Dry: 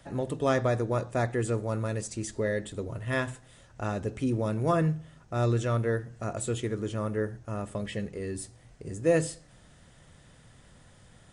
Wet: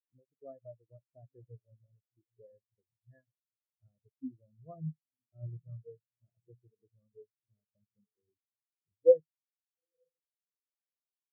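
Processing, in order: diffused feedback echo 0.915 s, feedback 43%, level -10 dB; transient shaper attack +3 dB, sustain -4 dB; spectral expander 4:1

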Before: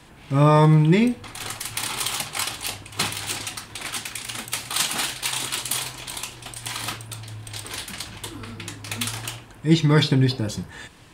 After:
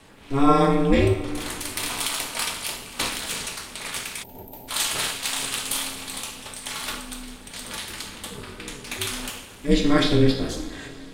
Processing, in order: two-slope reverb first 0.62 s, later 3.5 s, from -16 dB, DRR 1 dB; ring modulator 140 Hz; spectral gain 4.23–4.68, 960–12000 Hz -26 dB

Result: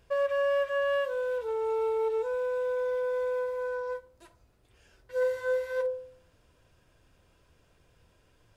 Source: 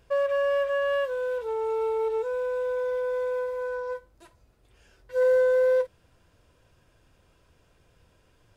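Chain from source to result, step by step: de-hum 46.44 Hz, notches 33; gain -1.5 dB

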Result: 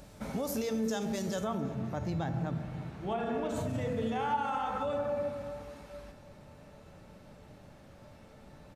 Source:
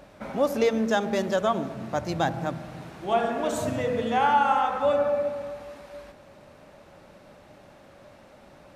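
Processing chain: tone controls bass +11 dB, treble +13 dB, from 1.43 s treble -5 dB, from 3.68 s treble +3 dB; limiter -19 dBFS, peak gain reduction 11.5 dB; resonator 440 Hz, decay 0.56 s, mix 80%; feedback echo 0.352 s, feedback 59%, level -22.5 dB; gain +6.5 dB

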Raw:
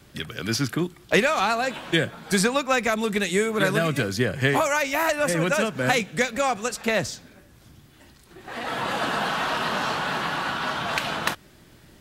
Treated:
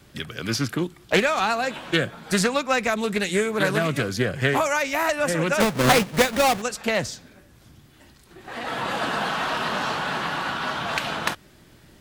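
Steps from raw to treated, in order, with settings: 5.6–6.62 half-waves squared off; Doppler distortion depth 0.31 ms

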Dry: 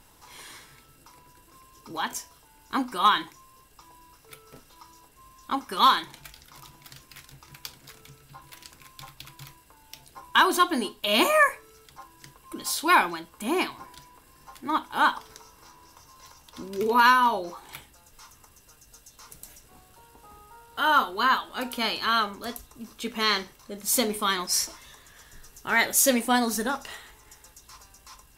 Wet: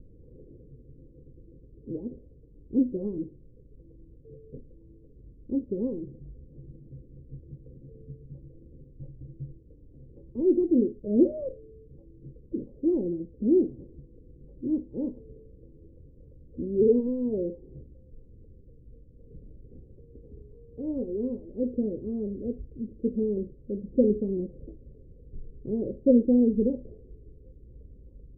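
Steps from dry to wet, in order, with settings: Chebyshev low-pass 520 Hz, order 6; low shelf 130 Hz +6.5 dB; gain +6 dB

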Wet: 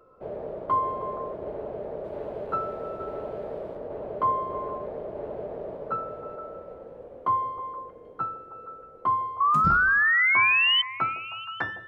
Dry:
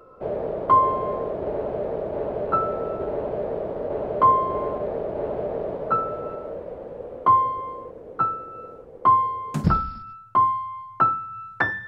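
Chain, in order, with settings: 2.04–3.77 high shelf 2900 Hz +8.5 dB; 9.4–10.82 painted sound rise 1100–3100 Hz -13 dBFS; delay with a stepping band-pass 0.157 s, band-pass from 490 Hz, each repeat 0.7 oct, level -8.5 dB; gain -8 dB

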